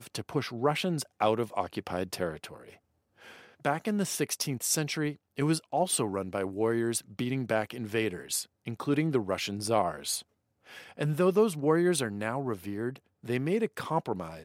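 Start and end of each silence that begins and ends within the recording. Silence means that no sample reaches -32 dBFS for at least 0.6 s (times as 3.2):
2.45–3.65
10.19–10.99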